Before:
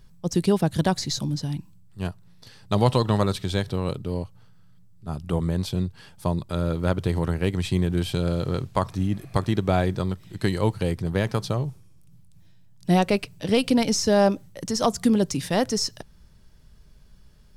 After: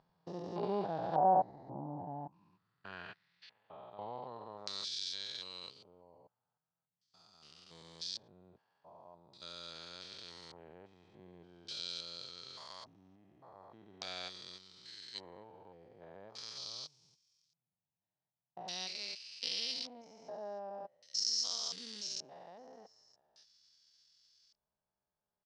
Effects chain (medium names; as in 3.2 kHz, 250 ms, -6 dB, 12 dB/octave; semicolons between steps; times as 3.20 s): spectrogram pixelated in time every 200 ms; LFO low-pass square 0.62 Hz 780–4700 Hz; tempo 0.69×; band-pass sweep 780 Hz -> 5.8 kHz, 2.14–4.55 s; trim +2.5 dB